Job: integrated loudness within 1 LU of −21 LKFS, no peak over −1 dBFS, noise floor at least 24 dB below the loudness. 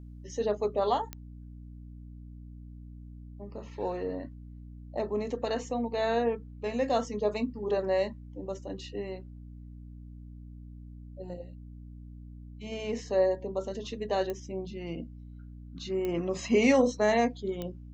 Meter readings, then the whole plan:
number of clicks 4; mains hum 60 Hz; hum harmonics up to 300 Hz; level of the hum −43 dBFS; integrated loudness −31.0 LKFS; sample peak −11.5 dBFS; target loudness −21.0 LKFS
→ click removal
hum removal 60 Hz, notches 5
level +10 dB

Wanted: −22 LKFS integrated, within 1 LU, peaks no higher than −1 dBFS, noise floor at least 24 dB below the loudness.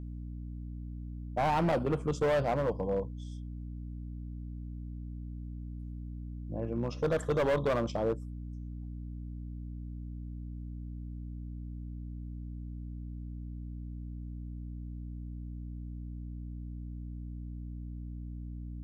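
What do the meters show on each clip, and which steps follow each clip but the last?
share of clipped samples 1.1%; peaks flattened at −24.0 dBFS; mains hum 60 Hz; hum harmonics up to 300 Hz; level of the hum −38 dBFS; integrated loudness −37.0 LKFS; sample peak −24.0 dBFS; target loudness −22.0 LKFS
→ clipped peaks rebuilt −24 dBFS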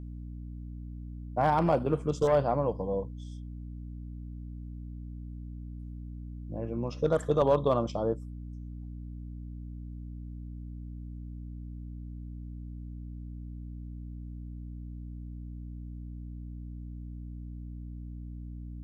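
share of clipped samples 0.0%; mains hum 60 Hz; hum harmonics up to 300 Hz; level of the hum −38 dBFS
→ mains-hum notches 60/120/180/240/300 Hz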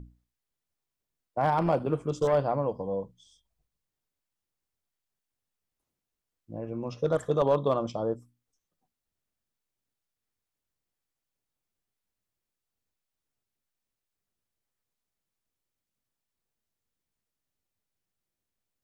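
mains hum none found; integrated loudness −28.5 LKFS; sample peak −14.0 dBFS; target loudness −22.0 LKFS
→ level +6.5 dB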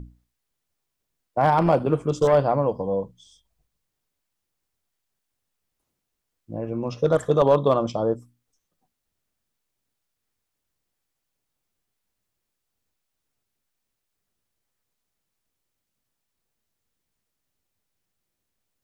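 integrated loudness −22.0 LKFS; sample peak −7.5 dBFS; background noise floor −81 dBFS

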